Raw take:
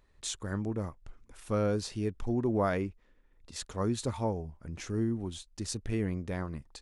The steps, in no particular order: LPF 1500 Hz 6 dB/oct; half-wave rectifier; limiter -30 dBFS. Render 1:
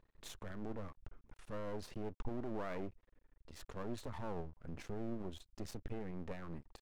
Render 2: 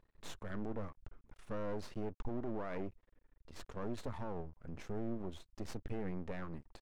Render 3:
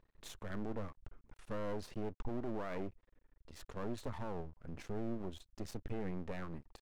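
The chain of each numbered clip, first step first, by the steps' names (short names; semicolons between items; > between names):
LPF > limiter > half-wave rectifier; half-wave rectifier > LPF > limiter; LPF > half-wave rectifier > limiter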